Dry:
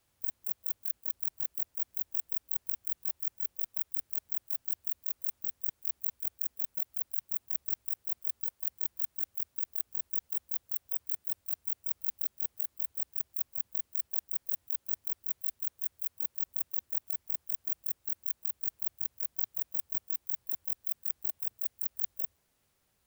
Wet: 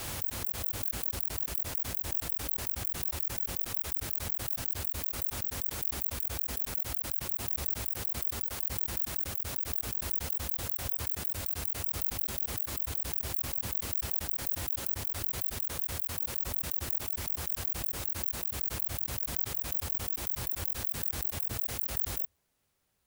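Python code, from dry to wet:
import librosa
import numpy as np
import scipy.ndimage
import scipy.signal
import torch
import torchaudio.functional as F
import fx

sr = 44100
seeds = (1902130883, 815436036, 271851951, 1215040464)

y = fx.pre_swell(x, sr, db_per_s=26.0)
y = F.gain(torch.from_numpy(y), -2.5).numpy()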